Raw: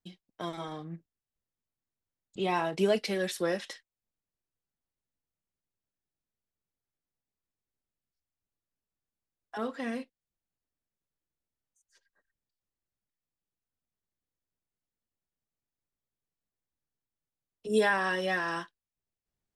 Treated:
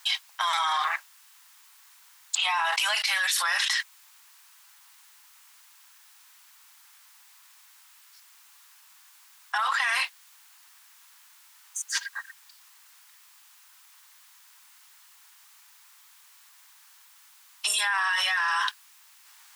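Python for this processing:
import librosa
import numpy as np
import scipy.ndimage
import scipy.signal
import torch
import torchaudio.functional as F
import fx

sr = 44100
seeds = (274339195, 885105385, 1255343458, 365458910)

y = scipy.signal.sosfilt(scipy.signal.butter(8, 890.0, 'highpass', fs=sr, output='sos'), x)
y = fx.env_flatten(y, sr, amount_pct=100)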